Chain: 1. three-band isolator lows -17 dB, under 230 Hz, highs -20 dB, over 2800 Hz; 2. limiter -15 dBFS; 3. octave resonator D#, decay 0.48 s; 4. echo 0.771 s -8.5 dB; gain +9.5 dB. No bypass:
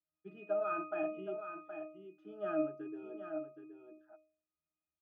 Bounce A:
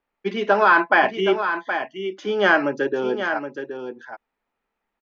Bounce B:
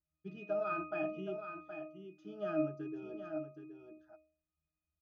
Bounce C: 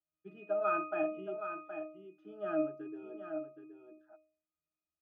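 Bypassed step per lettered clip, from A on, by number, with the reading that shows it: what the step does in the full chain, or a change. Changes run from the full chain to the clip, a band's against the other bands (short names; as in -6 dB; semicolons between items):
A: 3, 2 kHz band +13.0 dB; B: 1, 125 Hz band +9.0 dB; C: 2, momentary loudness spread change +2 LU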